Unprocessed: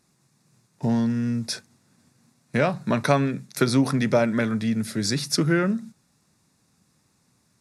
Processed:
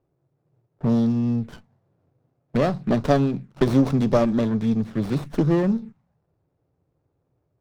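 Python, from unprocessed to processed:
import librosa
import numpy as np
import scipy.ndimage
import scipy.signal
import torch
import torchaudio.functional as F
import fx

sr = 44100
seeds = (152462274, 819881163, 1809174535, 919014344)

y = fx.env_lowpass(x, sr, base_hz=850.0, full_db=-16.0)
y = fx.env_phaser(y, sr, low_hz=210.0, high_hz=1900.0, full_db=-21.0)
y = fx.running_max(y, sr, window=17)
y = y * librosa.db_to_amplitude(3.0)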